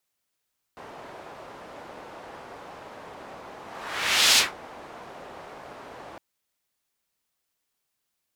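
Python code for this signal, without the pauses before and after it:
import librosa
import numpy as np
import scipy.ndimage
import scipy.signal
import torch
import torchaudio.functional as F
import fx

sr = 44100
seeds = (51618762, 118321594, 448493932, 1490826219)

y = fx.whoosh(sr, seeds[0], length_s=5.41, peak_s=3.6, rise_s=0.78, fall_s=0.18, ends_hz=740.0, peak_hz=4200.0, q=1.1, swell_db=25.5)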